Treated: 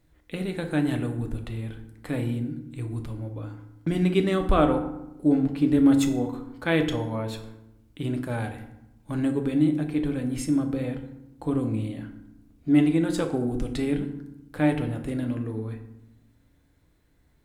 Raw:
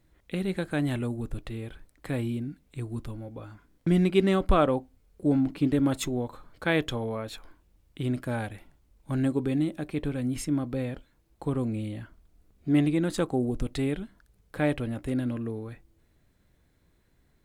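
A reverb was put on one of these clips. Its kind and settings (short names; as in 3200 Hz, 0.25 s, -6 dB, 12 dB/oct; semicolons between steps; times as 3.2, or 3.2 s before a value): FDN reverb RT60 0.87 s, low-frequency decay 1.5×, high-frequency decay 0.6×, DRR 4.5 dB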